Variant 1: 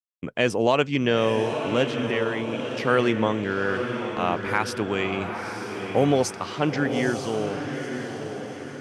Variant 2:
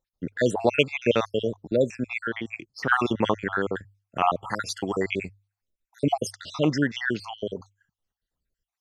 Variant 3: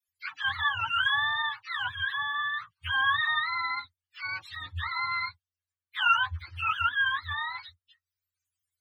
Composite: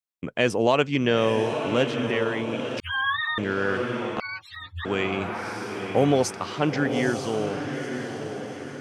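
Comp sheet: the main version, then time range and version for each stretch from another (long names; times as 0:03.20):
1
0:02.80–0:03.38: punch in from 3
0:04.20–0:04.85: punch in from 3
not used: 2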